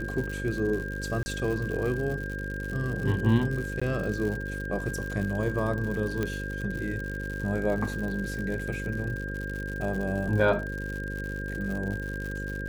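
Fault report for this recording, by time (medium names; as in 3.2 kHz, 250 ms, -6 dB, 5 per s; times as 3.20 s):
buzz 50 Hz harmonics 11 -35 dBFS
crackle 120 per s -33 dBFS
whine 1.6 kHz -36 dBFS
1.23–1.26 s: dropout 30 ms
3.80–3.81 s: dropout 15 ms
6.23 s: pop -16 dBFS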